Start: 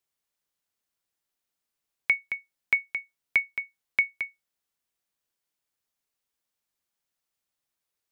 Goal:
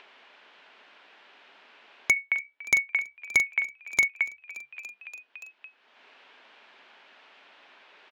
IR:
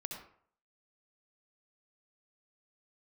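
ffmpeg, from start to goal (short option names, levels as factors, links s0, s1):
-filter_complex "[0:a]asplit=2[s0][s1];[s1]acompressor=threshold=0.0355:ratio=6,volume=1.41[s2];[s0][s2]amix=inputs=2:normalize=0,highpass=f=310:w=0.5412,highpass=f=310:w=1.3066,equalizer=f=330:t=q:w=4:g=-9,equalizer=f=500:t=q:w=4:g=-7,equalizer=f=760:t=q:w=4:g=-3,equalizer=f=1200:t=q:w=4:g=-5,equalizer=f=2000:t=q:w=4:g=-4,lowpass=f=2800:w=0.5412,lowpass=f=2800:w=1.3066,aeval=exprs='0.178*(abs(mod(val(0)/0.178+3,4)-2)-1)':c=same,asettb=1/sr,asplit=3[s3][s4][s5];[s3]atrim=end=2.124[s6];[s4]atrim=start=2.12:end=4.08,asetpts=PTS-STARTPTS,afade=t=in:d=0.004:c=qsin,afade=t=out:st=1.956:d=0.004:c=qsin,asplit=2[s7][s8];[s8]adelay=42,volume=0.447[s9];[s7][s9]amix=inputs=2:normalize=0,atrim=end_sample=86436[s10];[s5]atrim=start=4.076[s11];[s6][s10]acrossfade=d=0.004:c1=hsin:c2=qsin[s12];[s12][s11]acrossfade=d=0.004:c1=qsin:c2=hsin,asplit=6[s13][s14][s15][s16][s17][s18];[s14]adelay=287,afreqshift=68,volume=0.0794[s19];[s15]adelay=574,afreqshift=136,volume=0.0507[s20];[s16]adelay=861,afreqshift=204,volume=0.0324[s21];[s17]adelay=1148,afreqshift=272,volume=0.0209[s22];[s18]adelay=1435,afreqshift=340,volume=0.0133[s23];[s13][s19][s20][s21][s22][s23]amix=inputs=6:normalize=0,acompressor=mode=upward:threshold=0.0224:ratio=2.5,volume=1.33"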